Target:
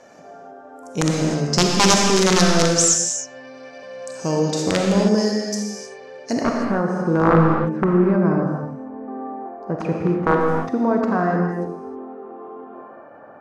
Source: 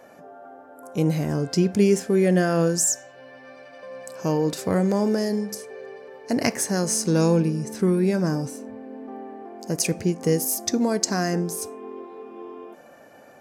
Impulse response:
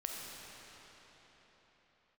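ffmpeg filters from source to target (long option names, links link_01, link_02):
-filter_complex "[0:a]aeval=exprs='(mod(3.76*val(0)+1,2)-1)/3.76':channel_layout=same,asetnsamples=nb_out_samples=441:pad=0,asendcmd='6.41 lowpass f 1200',lowpass=frequency=6300:width_type=q:width=2.3[link_01];[1:a]atrim=start_sample=2205,afade=type=out:start_time=0.37:duration=0.01,atrim=end_sample=16758[link_02];[link_01][link_02]afir=irnorm=-1:irlink=0,volume=3.5dB"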